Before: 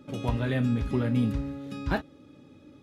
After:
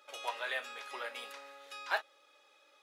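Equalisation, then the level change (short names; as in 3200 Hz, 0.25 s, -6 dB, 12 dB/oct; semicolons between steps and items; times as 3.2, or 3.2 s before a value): Bessel high-pass 960 Hz, order 6; +1.5 dB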